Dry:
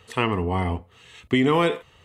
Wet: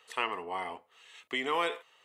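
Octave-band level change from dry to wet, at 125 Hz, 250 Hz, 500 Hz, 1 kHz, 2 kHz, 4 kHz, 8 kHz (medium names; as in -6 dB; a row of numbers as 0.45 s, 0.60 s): -33.0 dB, -20.5 dB, -12.5 dB, -7.0 dB, -6.0 dB, -6.0 dB, no reading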